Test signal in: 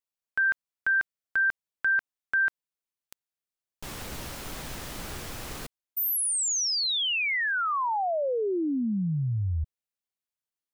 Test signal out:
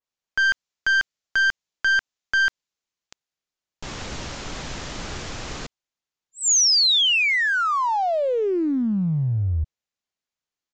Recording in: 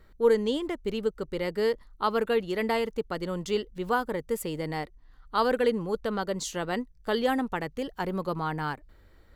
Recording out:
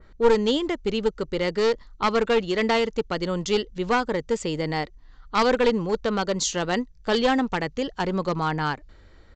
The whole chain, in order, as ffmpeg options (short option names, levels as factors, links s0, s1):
-af "aresample=16000,aeval=exprs='clip(val(0),-1,0.0562)':c=same,aresample=44100,adynamicequalizer=threshold=0.00794:dfrequency=2600:dqfactor=0.7:tfrequency=2600:tqfactor=0.7:attack=5:release=100:ratio=0.375:range=2.5:mode=boostabove:tftype=highshelf,volume=1.88"